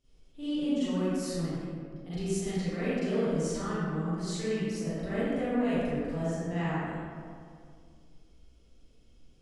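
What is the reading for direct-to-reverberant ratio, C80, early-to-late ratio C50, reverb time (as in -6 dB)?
-14.0 dB, -3.5 dB, -8.0 dB, 2.2 s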